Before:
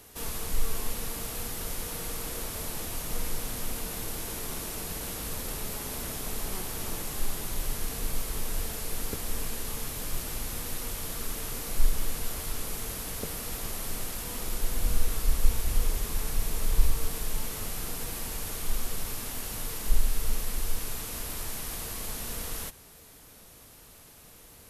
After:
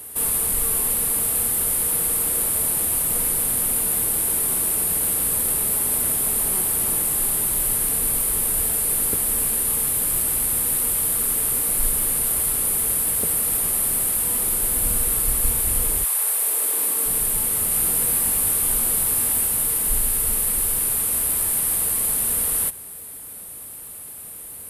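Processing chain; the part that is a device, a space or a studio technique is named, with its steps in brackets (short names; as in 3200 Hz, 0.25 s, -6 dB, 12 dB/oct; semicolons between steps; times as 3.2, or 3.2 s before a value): 16.03–17.06 HPF 680 Hz -> 200 Hz 24 dB/oct; budget condenser microphone (HPF 72 Hz 6 dB/oct; resonant high shelf 7600 Hz +8.5 dB, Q 3); 17.69–19.46 doubler 21 ms -5 dB; gain +6 dB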